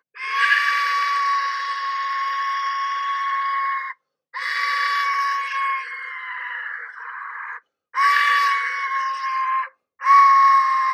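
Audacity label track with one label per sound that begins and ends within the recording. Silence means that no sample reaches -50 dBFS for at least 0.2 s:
4.330000	7.610000	sound
7.930000	9.720000	sound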